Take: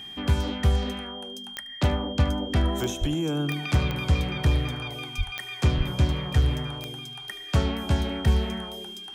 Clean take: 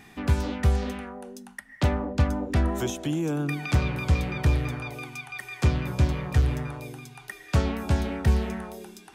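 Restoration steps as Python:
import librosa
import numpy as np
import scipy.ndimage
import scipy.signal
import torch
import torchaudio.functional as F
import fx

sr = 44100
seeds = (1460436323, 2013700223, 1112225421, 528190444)

y = fx.fix_declick_ar(x, sr, threshold=10.0)
y = fx.notch(y, sr, hz=3200.0, q=30.0)
y = fx.fix_deplosive(y, sr, at_s=(3.0, 5.17, 5.77))
y = fx.fix_echo_inverse(y, sr, delay_ms=75, level_db=-17.0)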